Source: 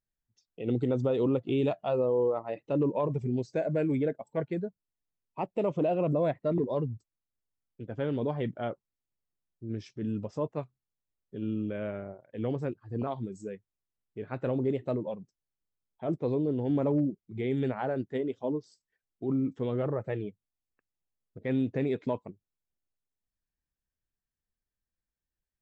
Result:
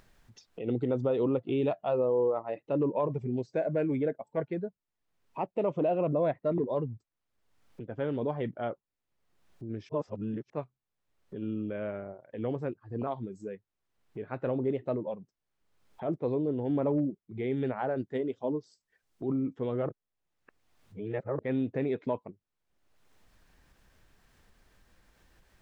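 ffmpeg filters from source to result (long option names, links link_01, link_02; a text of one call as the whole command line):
ffmpeg -i in.wav -filter_complex "[0:a]asettb=1/sr,asplit=3[link_01][link_02][link_03];[link_01]atrim=end=17.974[link_04];[link_02]atrim=start=17.97:end=19.32,asetpts=PTS-STARTPTS,afade=type=in:duration=0.004:curve=qsin,afade=type=out:start_time=1.346:duration=0.004:curve=qsin,bass=frequency=250:gain=2,treble=frequency=4000:gain=7[link_05];[link_03]atrim=start=19.316[link_06];[link_04][link_05]acrossfade=duration=0.004:curve1=hsin:curve2=qsin[link_07];[link_07][link_06]acrossfade=duration=0.004:curve1=qsin:curve2=hsin,asplit=5[link_08][link_09][link_10][link_11][link_12];[link_08]atrim=end=9.892[link_13];[link_09]atrim=start=9.888:end=10.502,asetpts=PTS-STARTPTS,areverse[link_14];[link_10]atrim=start=10.498:end=19.892[link_15];[link_11]atrim=start=19.888:end=21.392,asetpts=PTS-STARTPTS,areverse[link_16];[link_12]atrim=start=21.388[link_17];[link_13][link_14]acrossfade=duration=0.004:curve1=hsin:curve2=hsin[link_18];[link_18][link_15]acrossfade=duration=0.004:curve1=hsin:curve2=hsin[link_19];[link_19][link_16]acrossfade=duration=0.004:curve1=hsin:curve2=hsin[link_20];[link_20][link_17]acrossfade=duration=0.004:curve1=hsin:curve2=hsin,lowpass=frequency=1800:poles=1,lowshelf=frequency=350:gain=-6.5,acompressor=mode=upward:threshold=-40dB:ratio=2.5,volume=2.5dB" out.wav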